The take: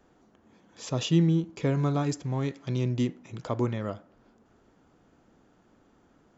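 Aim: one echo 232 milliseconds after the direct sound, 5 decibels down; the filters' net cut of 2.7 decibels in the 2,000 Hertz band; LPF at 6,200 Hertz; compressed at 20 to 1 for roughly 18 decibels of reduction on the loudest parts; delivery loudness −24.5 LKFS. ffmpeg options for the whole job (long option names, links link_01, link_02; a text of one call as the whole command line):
ffmpeg -i in.wav -af "lowpass=6200,equalizer=frequency=2000:width_type=o:gain=-3.5,acompressor=threshold=-35dB:ratio=20,aecho=1:1:232:0.562,volume=15.5dB" out.wav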